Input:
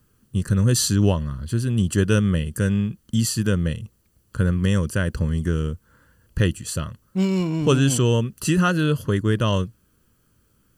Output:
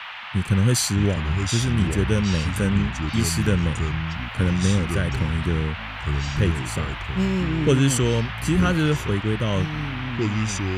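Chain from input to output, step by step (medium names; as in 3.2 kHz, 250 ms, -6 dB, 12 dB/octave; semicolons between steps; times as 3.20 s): rotary cabinet horn 1.1 Hz; band noise 770–3100 Hz -36 dBFS; ever faster or slower copies 526 ms, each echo -4 st, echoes 3, each echo -6 dB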